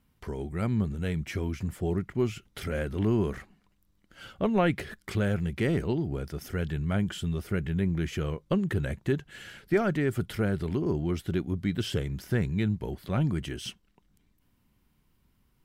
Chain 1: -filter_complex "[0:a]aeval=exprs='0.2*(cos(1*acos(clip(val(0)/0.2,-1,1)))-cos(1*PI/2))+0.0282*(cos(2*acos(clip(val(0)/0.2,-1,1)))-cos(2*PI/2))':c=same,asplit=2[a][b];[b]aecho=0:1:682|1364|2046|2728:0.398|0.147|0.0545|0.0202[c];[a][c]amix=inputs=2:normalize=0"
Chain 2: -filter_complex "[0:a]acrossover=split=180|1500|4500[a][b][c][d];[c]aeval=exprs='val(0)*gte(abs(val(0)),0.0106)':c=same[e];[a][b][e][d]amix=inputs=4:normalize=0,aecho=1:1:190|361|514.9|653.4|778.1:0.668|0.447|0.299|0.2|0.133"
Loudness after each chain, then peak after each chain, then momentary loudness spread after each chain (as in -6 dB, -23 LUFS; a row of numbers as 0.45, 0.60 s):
-30.0, -28.0 LUFS; -12.5, -10.0 dBFS; 10, 8 LU